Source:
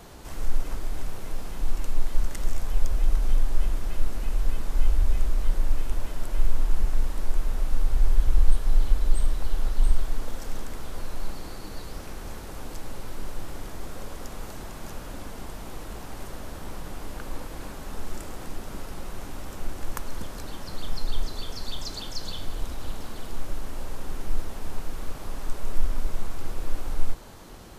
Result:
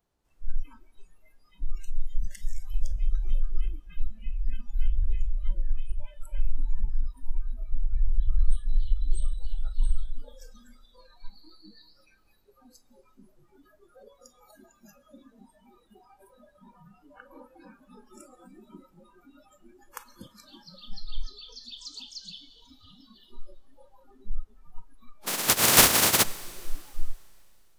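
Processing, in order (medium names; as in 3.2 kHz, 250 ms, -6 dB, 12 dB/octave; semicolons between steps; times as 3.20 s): 25.26–26.22 s: spectral contrast reduction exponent 0.23; spectral noise reduction 29 dB; Schroeder reverb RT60 2.7 s, combs from 29 ms, DRR 18 dB; trim -4 dB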